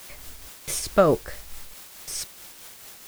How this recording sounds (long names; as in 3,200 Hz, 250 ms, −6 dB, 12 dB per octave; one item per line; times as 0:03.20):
a quantiser's noise floor 8 bits, dither triangular
tremolo triangle 4.6 Hz, depth 45%